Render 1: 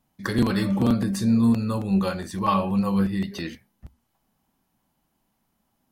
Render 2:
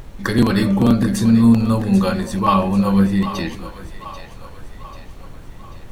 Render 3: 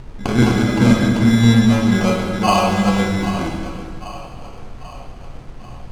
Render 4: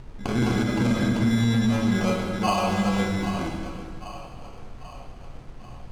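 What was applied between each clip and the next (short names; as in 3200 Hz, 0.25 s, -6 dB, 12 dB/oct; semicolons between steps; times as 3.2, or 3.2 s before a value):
added noise brown -41 dBFS; notch 4900 Hz, Q 16; on a send: split-band echo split 550 Hz, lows 0.208 s, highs 0.789 s, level -12 dB; on the sum: gain +6.5 dB
sample-and-hold 24×; air absorption 53 m; plate-style reverb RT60 1.6 s, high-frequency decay 0.8×, DRR 0 dB; gain -1 dB
limiter -7 dBFS, peak gain reduction 5.5 dB; gain -6.5 dB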